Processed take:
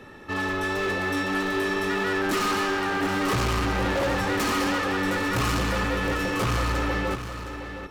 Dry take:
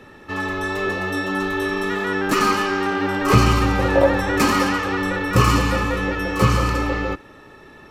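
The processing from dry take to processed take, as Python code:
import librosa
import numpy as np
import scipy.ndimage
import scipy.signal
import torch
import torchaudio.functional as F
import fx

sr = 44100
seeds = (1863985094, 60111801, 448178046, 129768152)

y = np.clip(10.0 ** (22.0 / 20.0) * x, -1.0, 1.0) / 10.0 ** (22.0 / 20.0)
y = y + 10.0 ** (-9.5 / 20.0) * np.pad(y, (int(714 * sr / 1000.0), 0))[:len(y)]
y = F.gain(torch.from_numpy(y), -1.0).numpy()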